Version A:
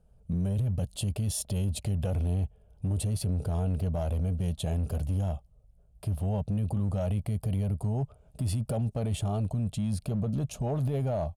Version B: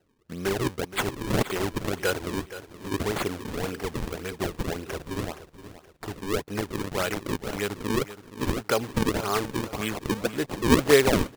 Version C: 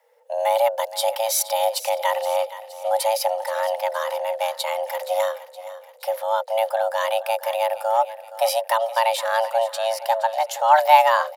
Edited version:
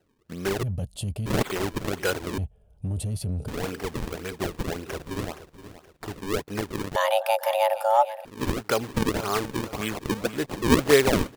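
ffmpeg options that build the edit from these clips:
-filter_complex "[0:a]asplit=2[a][b];[1:a]asplit=4[c][d][e][f];[c]atrim=end=0.632[g];[a]atrim=start=0.628:end=1.262[h];[d]atrim=start=1.258:end=2.382[i];[b]atrim=start=2.378:end=3.482[j];[e]atrim=start=3.478:end=6.962[k];[2:a]atrim=start=6.958:end=8.252[l];[f]atrim=start=8.248[m];[g][h]acrossfade=d=0.004:c1=hsin:c2=hsin[n];[n][i]acrossfade=d=0.004:c1=hsin:c2=hsin[o];[o][j]acrossfade=d=0.004:c1=hsin:c2=hsin[p];[p][k]acrossfade=d=0.004:c1=hsin:c2=hsin[q];[q][l]acrossfade=d=0.004:c1=hsin:c2=hsin[r];[r][m]acrossfade=d=0.004:c1=hsin:c2=hsin"

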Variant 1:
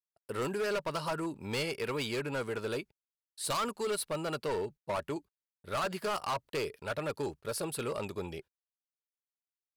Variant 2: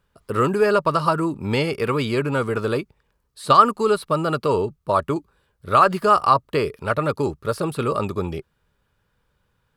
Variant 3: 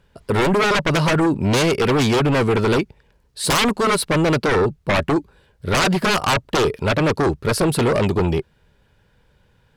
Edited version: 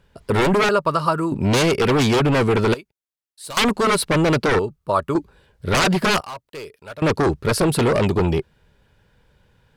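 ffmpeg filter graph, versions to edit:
-filter_complex "[1:a]asplit=2[a][b];[0:a]asplit=2[c][d];[2:a]asplit=5[e][f][g][h][i];[e]atrim=end=0.692[j];[a]atrim=start=0.688:end=1.322[k];[f]atrim=start=1.318:end=2.742[l];[c]atrim=start=2.738:end=3.572[m];[g]atrim=start=3.568:end=4.592[n];[b]atrim=start=4.588:end=5.152[o];[h]atrim=start=5.148:end=6.212[p];[d]atrim=start=6.208:end=7.022[q];[i]atrim=start=7.018[r];[j][k]acrossfade=d=0.004:c1=hsin:c2=hsin[s];[s][l]acrossfade=d=0.004:c1=hsin:c2=hsin[t];[t][m]acrossfade=d=0.004:c1=hsin:c2=hsin[u];[u][n]acrossfade=d=0.004:c1=hsin:c2=hsin[v];[v][o]acrossfade=d=0.004:c1=hsin:c2=hsin[w];[w][p]acrossfade=d=0.004:c1=hsin:c2=hsin[x];[x][q]acrossfade=d=0.004:c1=hsin:c2=hsin[y];[y][r]acrossfade=d=0.004:c1=hsin:c2=hsin"

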